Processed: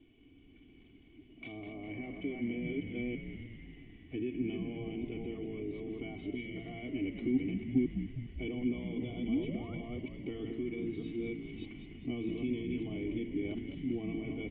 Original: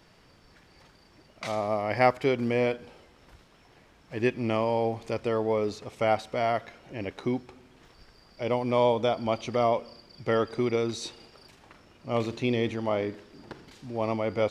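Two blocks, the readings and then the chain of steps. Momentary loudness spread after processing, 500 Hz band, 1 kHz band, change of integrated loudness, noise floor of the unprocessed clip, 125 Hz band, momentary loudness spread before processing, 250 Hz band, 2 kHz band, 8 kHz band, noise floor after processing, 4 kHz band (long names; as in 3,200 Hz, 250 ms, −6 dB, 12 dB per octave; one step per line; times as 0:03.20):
11 LU, −15.0 dB, −26.5 dB, −9.5 dB, −58 dBFS, −6.5 dB, 15 LU, −2.0 dB, −10.5 dB, can't be measured, −59 dBFS, −12.0 dB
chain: delay that plays each chunk backwards 315 ms, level −5.5 dB
in parallel at +2.5 dB: downward compressor, threshold −34 dBFS, peak gain reduction 17 dB
on the sum: comb filter 2.7 ms, depth 90%
hum removal 112.6 Hz, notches 29
brickwall limiter −18 dBFS, peak gain reduction 12 dB
gain on a spectral selection 0:06.28–0:06.57, 470–1,800 Hz −25 dB
speech leveller within 5 dB 0.5 s
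sound drawn into the spectrogram rise, 0:09.28–0:09.75, 200–1,500 Hz −28 dBFS
formant resonators in series i
echo with shifted repeats 202 ms, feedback 63%, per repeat −66 Hz, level −8.5 dB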